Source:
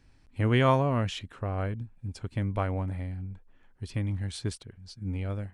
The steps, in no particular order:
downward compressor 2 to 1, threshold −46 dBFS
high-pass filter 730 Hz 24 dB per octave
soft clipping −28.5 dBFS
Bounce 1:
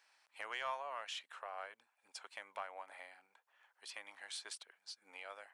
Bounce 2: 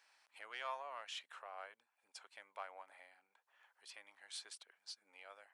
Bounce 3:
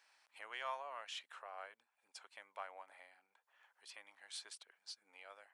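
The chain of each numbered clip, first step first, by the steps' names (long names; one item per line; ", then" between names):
high-pass filter, then downward compressor, then soft clipping
downward compressor, then soft clipping, then high-pass filter
downward compressor, then high-pass filter, then soft clipping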